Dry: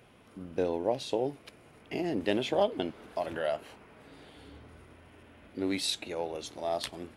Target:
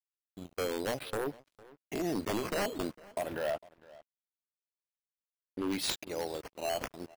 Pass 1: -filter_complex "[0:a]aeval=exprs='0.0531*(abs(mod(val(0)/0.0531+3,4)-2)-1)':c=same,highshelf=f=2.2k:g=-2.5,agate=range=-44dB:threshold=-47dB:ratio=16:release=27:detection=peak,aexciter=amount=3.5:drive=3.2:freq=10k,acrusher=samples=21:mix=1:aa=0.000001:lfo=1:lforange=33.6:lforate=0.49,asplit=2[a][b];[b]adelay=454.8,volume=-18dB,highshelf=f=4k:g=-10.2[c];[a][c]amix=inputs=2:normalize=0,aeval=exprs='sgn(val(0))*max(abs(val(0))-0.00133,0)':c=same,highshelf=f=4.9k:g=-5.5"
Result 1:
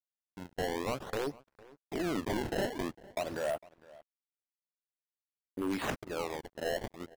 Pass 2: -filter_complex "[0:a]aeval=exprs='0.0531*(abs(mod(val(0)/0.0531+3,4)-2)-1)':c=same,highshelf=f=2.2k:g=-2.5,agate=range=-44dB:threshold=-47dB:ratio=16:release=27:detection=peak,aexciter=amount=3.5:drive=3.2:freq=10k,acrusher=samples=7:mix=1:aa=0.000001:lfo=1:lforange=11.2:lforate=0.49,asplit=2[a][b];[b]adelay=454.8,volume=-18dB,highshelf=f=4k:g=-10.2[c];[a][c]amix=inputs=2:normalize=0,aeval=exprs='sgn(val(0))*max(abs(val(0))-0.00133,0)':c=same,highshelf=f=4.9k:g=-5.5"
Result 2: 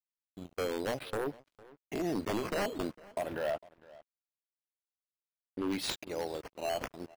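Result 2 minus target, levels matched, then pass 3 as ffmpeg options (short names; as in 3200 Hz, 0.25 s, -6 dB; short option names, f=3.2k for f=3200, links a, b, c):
8000 Hz band -3.5 dB
-filter_complex "[0:a]aeval=exprs='0.0531*(abs(mod(val(0)/0.0531+3,4)-2)-1)':c=same,highshelf=f=2.2k:g=-2.5,agate=range=-44dB:threshold=-47dB:ratio=16:release=27:detection=peak,aexciter=amount=3.5:drive=3.2:freq=10k,acrusher=samples=7:mix=1:aa=0.000001:lfo=1:lforange=11.2:lforate=0.49,asplit=2[a][b];[b]adelay=454.8,volume=-18dB,highshelf=f=4k:g=-10.2[c];[a][c]amix=inputs=2:normalize=0,aeval=exprs='sgn(val(0))*max(abs(val(0))-0.00133,0)':c=same"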